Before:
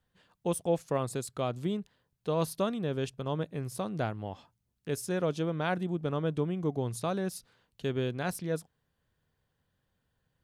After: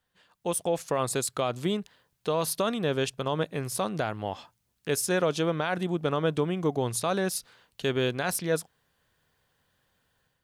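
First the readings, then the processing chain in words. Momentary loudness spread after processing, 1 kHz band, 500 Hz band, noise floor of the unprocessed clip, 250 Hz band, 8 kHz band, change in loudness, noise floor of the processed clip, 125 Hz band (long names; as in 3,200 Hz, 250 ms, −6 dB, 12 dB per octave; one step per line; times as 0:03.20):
7 LU, +5.5 dB, +4.5 dB, −80 dBFS, +2.5 dB, +10.5 dB, +4.5 dB, −76 dBFS, +1.0 dB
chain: low-shelf EQ 410 Hz −10.5 dB
brickwall limiter −27 dBFS, peak gain reduction 8.5 dB
automatic gain control gain up to 7.5 dB
level +3.5 dB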